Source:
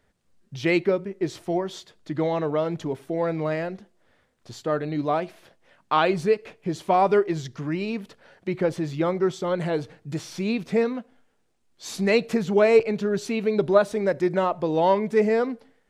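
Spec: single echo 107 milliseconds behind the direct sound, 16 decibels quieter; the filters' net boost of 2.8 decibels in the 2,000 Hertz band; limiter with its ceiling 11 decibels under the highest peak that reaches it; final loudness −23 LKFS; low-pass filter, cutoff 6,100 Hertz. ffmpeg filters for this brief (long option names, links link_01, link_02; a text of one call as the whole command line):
ffmpeg -i in.wav -af "lowpass=6100,equalizer=frequency=2000:width_type=o:gain=3.5,alimiter=limit=-15.5dB:level=0:latency=1,aecho=1:1:107:0.158,volume=4dB" out.wav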